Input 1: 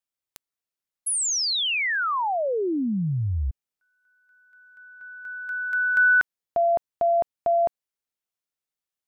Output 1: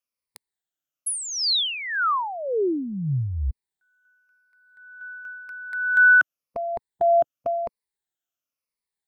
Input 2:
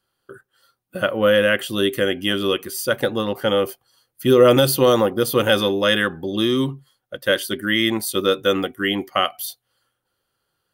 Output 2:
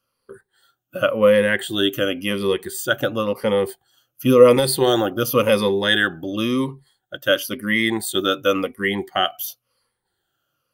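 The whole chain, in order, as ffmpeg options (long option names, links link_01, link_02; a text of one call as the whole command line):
ffmpeg -i in.wav -af "afftfilt=real='re*pow(10,12/40*sin(2*PI*(0.9*log(max(b,1)*sr/1024/100)/log(2)-(-0.94)*(pts-256)/sr)))':imag='im*pow(10,12/40*sin(2*PI*(0.9*log(max(b,1)*sr/1024/100)/log(2)-(-0.94)*(pts-256)/sr)))':win_size=1024:overlap=0.75,volume=-2dB" out.wav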